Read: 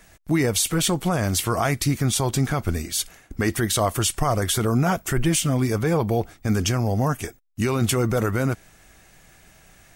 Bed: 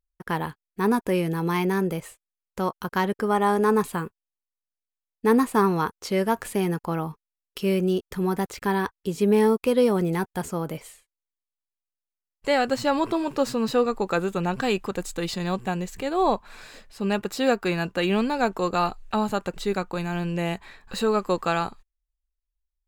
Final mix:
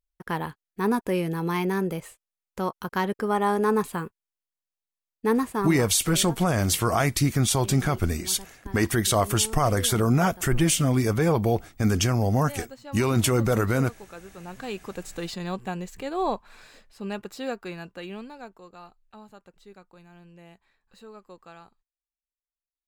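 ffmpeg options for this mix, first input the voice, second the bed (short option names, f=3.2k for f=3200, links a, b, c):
-filter_complex "[0:a]adelay=5350,volume=-0.5dB[a];[1:a]volume=12.5dB,afade=t=out:st=5.17:d=0.83:silence=0.141254,afade=t=in:st=14.33:d=0.84:silence=0.188365,afade=t=out:st=16.24:d=2.39:silence=0.11885[b];[a][b]amix=inputs=2:normalize=0"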